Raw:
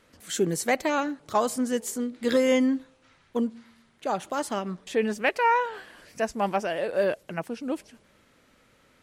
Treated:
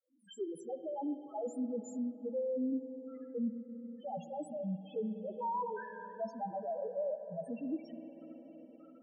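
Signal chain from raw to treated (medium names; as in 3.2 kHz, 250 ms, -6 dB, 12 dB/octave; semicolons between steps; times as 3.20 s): fade-in on the opening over 1.73 s; high-pass 190 Hz 12 dB/octave; reverse; compression 10:1, threshold -34 dBFS, peak gain reduction 17.5 dB; reverse; loudest bins only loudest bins 1; reverberation RT60 3.5 s, pre-delay 47 ms, DRR 10 dB; three bands compressed up and down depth 40%; trim +7 dB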